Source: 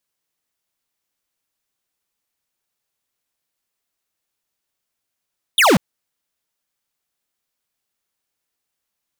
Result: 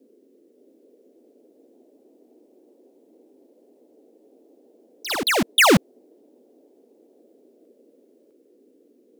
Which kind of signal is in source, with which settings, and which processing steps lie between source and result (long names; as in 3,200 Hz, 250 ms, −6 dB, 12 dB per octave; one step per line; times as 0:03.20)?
single falling chirp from 3,800 Hz, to 150 Hz, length 0.19 s square, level −12 dB
parametric band 850 Hz −4 dB 0.93 octaves
noise in a band 240–490 Hz −57 dBFS
delay with pitch and tempo change per echo 576 ms, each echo +3 semitones, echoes 3, each echo −6 dB